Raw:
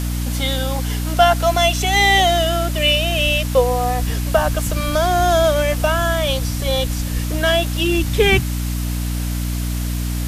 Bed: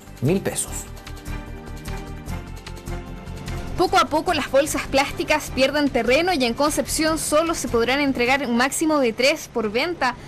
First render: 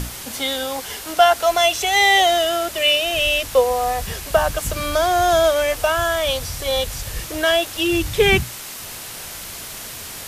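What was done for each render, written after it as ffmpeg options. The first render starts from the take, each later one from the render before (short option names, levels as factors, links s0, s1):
-af "bandreject=f=60:t=h:w=6,bandreject=f=120:t=h:w=6,bandreject=f=180:t=h:w=6,bandreject=f=240:t=h:w=6,bandreject=f=300:t=h:w=6"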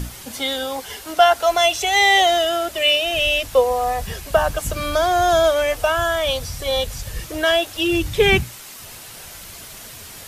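-af "afftdn=nr=6:nf=-34"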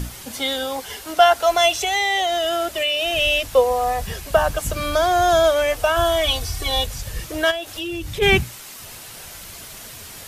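-filter_complex "[0:a]asettb=1/sr,asplit=3[s0][s1][s2];[s0]atrim=end=1.734[s3];[s1]atrim=start=1.73:end=3.16,asetpts=PTS-STARTPTS,afade=t=in:d=0.004:c=qsin,afade=t=out:st=1.426:d=0.004:c=qsin,acompressor=threshold=0.141:ratio=6:attack=3.2:release=140:knee=1:detection=peak[s4];[s2]atrim=start=3.156[s5];[s3][s4]acrossfade=d=0.004:c1=hsin:c2=qsin[s6];[s6][s5]acrossfade=d=0.004:c1=qsin:c2=hsin,asettb=1/sr,asplit=3[s7][s8][s9];[s7]atrim=end=5.964[s10];[s8]atrim=start=5.96:end=6.86,asetpts=PTS-STARTPTS,afade=t=in:d=0.004:c=qsin,afade=t=out:st=0.896:d=0.004:c=qsin,aecho=1:1:2.7:0.86,atrim=end_sample=39690[s11];[s9]atrim=start=6.856[s12];[s10][s11]acrossfade=d=0.004:c1=hsin:c2=qsin[s13];[s13][s12]acrossfade=d=0.004:c1=qsin:c2=hsin,asplit=3[s14][s15][s16];[s14]afade=t=out:st=7.5:d=0.02[s17];[s15]acompressor=threshold=0.0447:ratio=3:attack=3.2:release=140:knee=1:detection=peak,afade=t=in:st=7.5:d=0.02,afade=t=out:st=8.21:d=0.02[s18];[s16]afade=t=in:st=8.21:d=0.02[s19];[s17][s18][s19]amix=inputs=3:normalize=0"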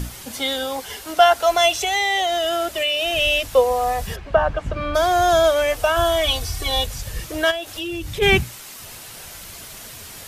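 -filter_complex "[0:a]asplit=3[s0][s1][s2];[s0]afade=t=out:st=4.15:d=0.02[s3];[s1]lowpass=2200,afade=t=in:st=4.15:d=0.02,afade=t=out:st=4.94:d=0.02[s4];[s2]afade=t=in:st=4.94:d=0.02[s5];[s3][s4][s5]amix=inputs=3:normalize=0"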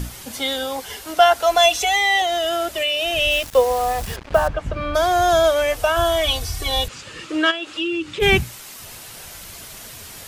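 -filter_complex "[0:a]asettb=1/sr,asplit=3[s0][s1][s2];[s0]atrim=end=1.554[s3];[s1]atrim=start=1.55:end=2.22,asetpts=PTS-STARTPTS,afade=t=in:d=0.004:c=qsin,afade=t=out:st=0.666:d=0.004:c=qsin,aecho=1:1:4.1:0.65,atrim=end_sample=29547[s4];[s2]atrim=start=2.216[s5];[s3][s4]acrossfade=d=0.004:c1=hsin:c2=qsin[s6];[s6][s5]acrossfade=d=0.004:c1=qsin:c2=hsin,asettb=1/sr,asplit=3[s7][s8][s9];[s7]atrim=end=3.314[s10];[s8]atrim=start=3.31:end=4.48,asetpts=PTS-STARTPTS,afade=t=in:d=0.004:c=qsin,afade=t=out:st=1.166:d=0.004:c=qsin,acrusher=bits=4:mix=0:aa=0.5[s11];[s9]atrim=start=4.476[s12];[s10][s11]acrossfade=d=0.004:c1=hsin:c2=qsin[s13];[s13][s12]acrossfade=d=0.004:c1=qsin:c2=hsin,asettb=1/sr,asplit=3[s14][s15][s16];[s14]atrim=end=6.884[s17];[s15]atrim=start=6.88:end=8.2,asetpts=PTS-STARTPTS,afade=t=in:d=0.004:c=qsin,afade=t=out:st=1.316:d=0.004:c=qsin,highpass=220,equalizer=f=310:t=q:w=4:g=9,equalizer=f=700:t=q:w=4:g=-8,equalizer=f=1300:t=q:w=4:g=7,equalizer=f=2700:t=q:w=4:g=6,equalizer=f=5800:t=q:w=4:g=-6,lowpass=f=7200:w=0.5412,lowpass=f=7200:w=1.3066[s18];[s16]atrim=start=8.196[s19];[s17][s18]acrossfade=d=0.004:c1=hsin:c2=qsin[s20];[s20][s19]acrossfade=d=0.004:c1=qsin:c2=hsin"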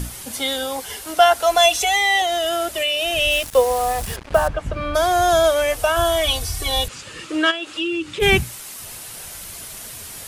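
-af "equalizer=f=10000:w=1.4:g=6.5"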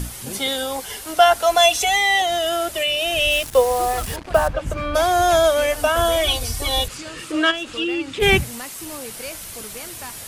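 -filter_complex "[1:a]volume=0.15[s0];[0:a][s0]amix=inputs=2:normalize=0"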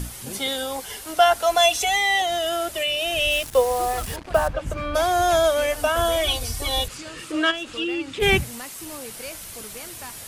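-af "volume=0.708"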